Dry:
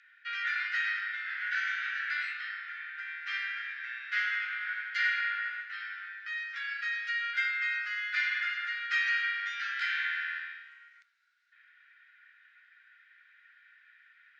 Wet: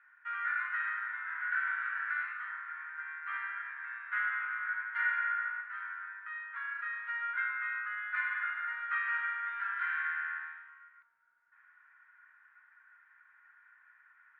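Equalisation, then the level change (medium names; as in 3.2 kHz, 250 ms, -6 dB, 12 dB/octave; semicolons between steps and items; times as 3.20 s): resonant low-pass 960 Hz, resonance Q 5.4; distance through air 300 m; +6.5 dB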